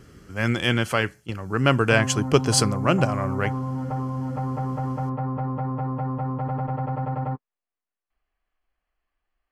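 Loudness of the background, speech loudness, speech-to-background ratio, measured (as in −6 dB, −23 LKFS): −28.5 LKFS, −22.5 LKFS, 6.0 dB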